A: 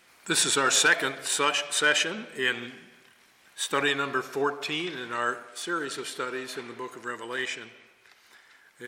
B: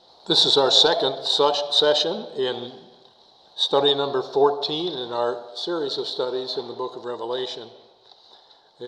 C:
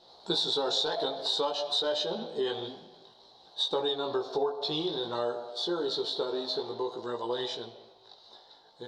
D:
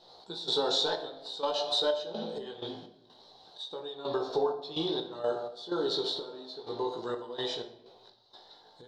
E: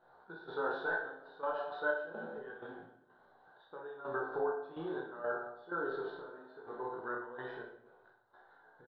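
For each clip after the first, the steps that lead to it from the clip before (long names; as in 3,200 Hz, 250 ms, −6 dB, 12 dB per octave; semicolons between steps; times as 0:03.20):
drawn EQ curve 170 Hz 0 dB, 260 Hz −3 dB, 430 Hz +6 dB, 850 Hz +9 dB, 1,300 Hz −10 dB, 2,400 Hz −24 dB, 3,900 Hz +12 dB, 6,800 Hz −14 dB, 10,000 Hz −25 dB, 14,000 Hz −29 dB; level +4.5 dB
chorus effect 0.54 Hz, delay 16.5 ms, depth 2.6 ms; downward compressor 5 to 1, threshold −27 dBFS, peak gain reduction 12 dB
gate pattern "x.xx..xx.x." 63 BPM −12 dB; rectangular room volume 160 cubic metres, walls mixed, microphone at 0.43 metres
transistor ladder low-pass 1,600 Hz, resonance 80%; on a send: reverse bouncing-ball delay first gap 30 ms, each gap 1.1×, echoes 5; on the sum: level +2.5 dB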